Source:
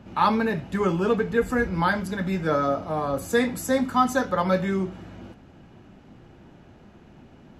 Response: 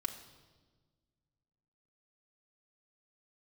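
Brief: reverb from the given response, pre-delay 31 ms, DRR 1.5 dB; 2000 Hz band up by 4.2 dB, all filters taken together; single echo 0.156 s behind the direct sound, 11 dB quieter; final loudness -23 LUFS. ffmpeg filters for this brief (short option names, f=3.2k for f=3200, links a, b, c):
-filter_complex "[0:a]equalizer=f=2k:t=o:g=5.5,aecho=1:1:156:0.282,asplit=2[a][b];[1:a]atrim=start_sample=2205,adelay=31[c];[b][c]afir=irnorm=-1:irlink=0,volume=-2dB[d];[a][d]amix=inputs=2:normalize=0,volume=-2dB"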